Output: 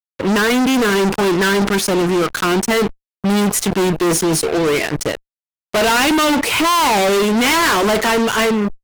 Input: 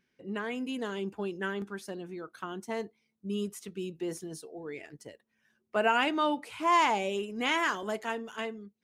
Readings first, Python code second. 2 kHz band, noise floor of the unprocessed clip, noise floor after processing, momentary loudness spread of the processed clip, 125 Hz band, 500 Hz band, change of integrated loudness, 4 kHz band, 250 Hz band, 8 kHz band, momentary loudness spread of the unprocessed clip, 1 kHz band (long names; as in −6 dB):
+16.0 dB, −78 dBFS, below −85 dBFS, 5 LU, +22.0 dB, +17.5 dB, +16.5 dB, +19.0 dB, +19.5 dB, +26.0 dB, 17 LU, +13.0 dB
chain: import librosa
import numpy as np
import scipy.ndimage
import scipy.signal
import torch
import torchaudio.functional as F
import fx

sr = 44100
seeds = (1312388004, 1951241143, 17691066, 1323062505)

y = fx.fuzz(x, sr, gain_db=49.0, gate_db=-52.0)
y = fx.sustainer(y, sr, db_per_s=140.0)